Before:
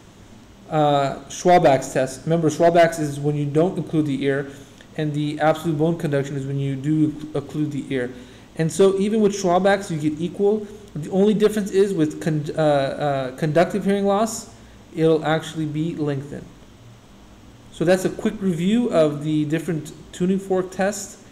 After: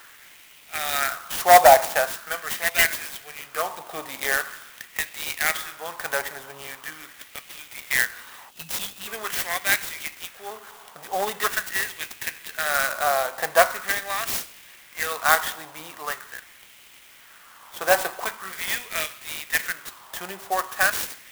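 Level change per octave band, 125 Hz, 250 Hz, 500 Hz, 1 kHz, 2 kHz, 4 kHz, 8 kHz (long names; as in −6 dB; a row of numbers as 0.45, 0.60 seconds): −25.5, −25.0, −7.5, +1.0, +6.5, +4.0, +5.5 decibels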